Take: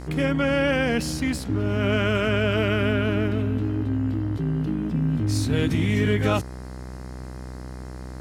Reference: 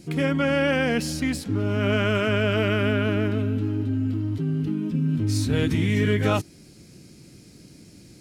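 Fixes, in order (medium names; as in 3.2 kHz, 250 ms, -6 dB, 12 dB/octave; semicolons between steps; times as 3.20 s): de-hum 63.3 Hz, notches 33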